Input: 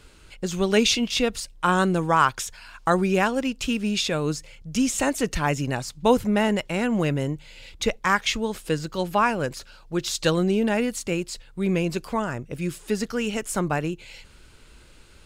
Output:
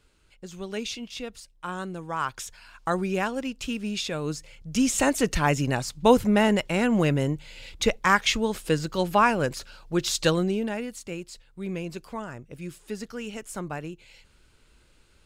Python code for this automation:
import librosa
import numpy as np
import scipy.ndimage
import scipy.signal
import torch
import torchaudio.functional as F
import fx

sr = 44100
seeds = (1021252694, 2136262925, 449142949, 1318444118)

y = fx.gain(x, sr, db=fx.line((2.05, -13.0), (2.45, -5.5), (4.15, -5.5), (4.99, 1.0), (10.19, 1.0), (10.82, -9.0)))